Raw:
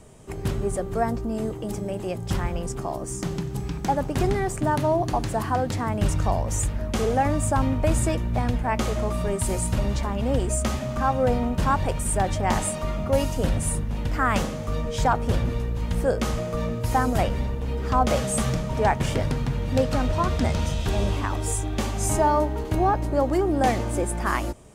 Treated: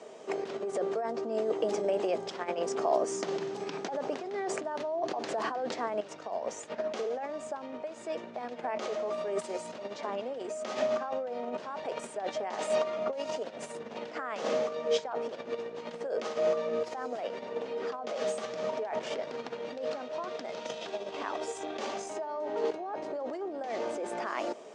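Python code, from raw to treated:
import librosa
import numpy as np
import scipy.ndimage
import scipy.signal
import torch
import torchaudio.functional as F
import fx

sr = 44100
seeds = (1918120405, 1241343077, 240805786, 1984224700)

y = fx.over_compress(x, sr, threshold_db=-30.0, ratio=-1.0)
y = fx.cabinet(y, sr, low_hz=280.0, low_slope=24, high_hz=6100.0, hz=(300.0, 450.0, 650.0), db=(-5, 5, 6))
y = F.gain(torch.from_numpy(y), -2.5).numpy()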